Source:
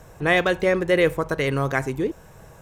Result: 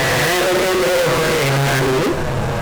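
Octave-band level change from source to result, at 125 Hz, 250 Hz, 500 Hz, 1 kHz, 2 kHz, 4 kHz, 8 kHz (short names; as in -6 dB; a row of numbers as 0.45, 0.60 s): +9.0, +5.5, +5.5, +9.0, +6.0, +12.5, +19.5 dB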